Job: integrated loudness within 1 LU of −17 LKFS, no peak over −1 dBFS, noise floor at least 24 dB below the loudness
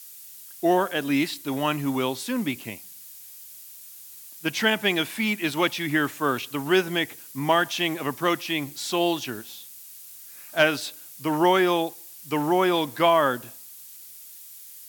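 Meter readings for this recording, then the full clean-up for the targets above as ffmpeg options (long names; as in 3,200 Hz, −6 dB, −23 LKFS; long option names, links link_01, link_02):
background noise floor −45 dBFS; target noise floor −49 dBFS; integrated loudness −24.5 LKFS; sample peak −4.5 dBFS; target loudness −17.0 LKFS
→ -af "afftdn=noise_reduction=6:noise_floor=-45"
-af "volume=7.5dB,alimiter=limit=-1dB:level=0:latency=1"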